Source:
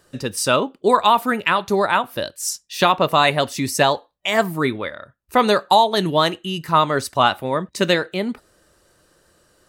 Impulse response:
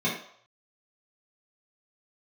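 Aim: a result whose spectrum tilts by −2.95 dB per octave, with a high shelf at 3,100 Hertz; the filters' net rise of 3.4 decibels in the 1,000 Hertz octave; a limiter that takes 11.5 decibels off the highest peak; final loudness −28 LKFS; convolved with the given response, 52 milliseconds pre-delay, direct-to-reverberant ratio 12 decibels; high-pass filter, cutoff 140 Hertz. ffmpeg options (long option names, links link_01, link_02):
-filter_complex "[0:a]highpass=140,equalizer=frequency=1000:width_type=o:gain=3.5,highshelf=frequency=3100:gain=5.5,alimiter=limit=-9.5dB:level=0:latency=1,asplit=2[link_01][link_02];[1:a]atrim=start_sample=2205,adelay=52[link_03];[link_02][link_03]afir=irnorm=-1:irlink=0,volume=-23.5dB[link_04];[link_01][link_04]amix=inputs=2:normalize=0,volume=-6.5dB"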